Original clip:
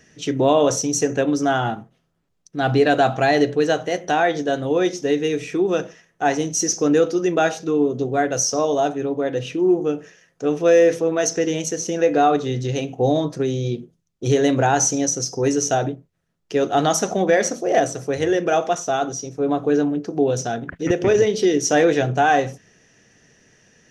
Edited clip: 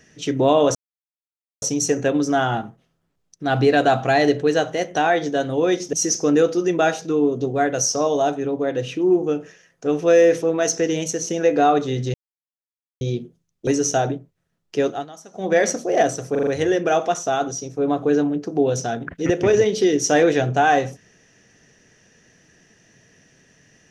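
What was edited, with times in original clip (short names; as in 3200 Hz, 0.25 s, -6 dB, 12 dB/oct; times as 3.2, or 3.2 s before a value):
0.75 insert silence 0.87 s
5.06–6.51 cut
12.72–13.59 mute
14.25–15.44 cut
16.59–17.34 dip -22 dB, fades 0.24 s
18.08 stutter 0.04 s, 5 plays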